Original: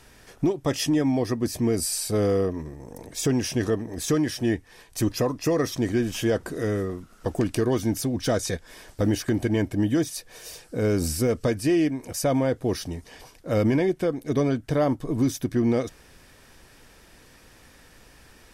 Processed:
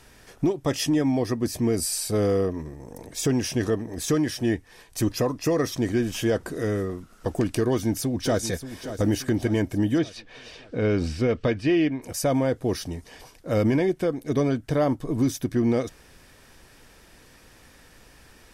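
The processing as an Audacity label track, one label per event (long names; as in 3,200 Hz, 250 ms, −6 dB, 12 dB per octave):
7.670000	8.430000	delay throw 580 ms, feedback 50%, level −11.5 dB
9.980000	12.020000	low-pass with resonance 3,100 Hz, resonance Q 1.6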